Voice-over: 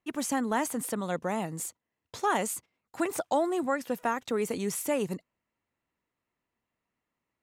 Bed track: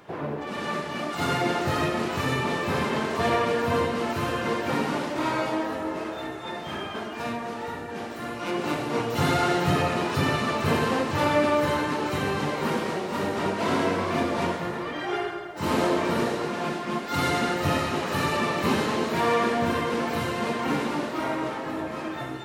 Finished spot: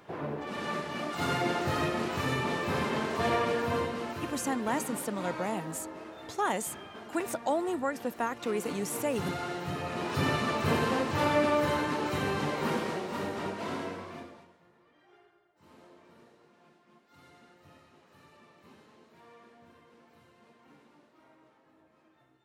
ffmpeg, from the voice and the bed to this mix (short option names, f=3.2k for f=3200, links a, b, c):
-filter_complex "[0:a]adelay=4150,volume=-2.5dB[a];[1:a]volume=4dB,afade=t=out:st=3.51:d=0.85:silence=0.398107,afade=t=in:st=9.81:d=0.45:silence=0.375837,afade=t=out:st=12.73:d=1.72:silence=0.0354813[b];[a][b]amix=inputs=2:normalize=0"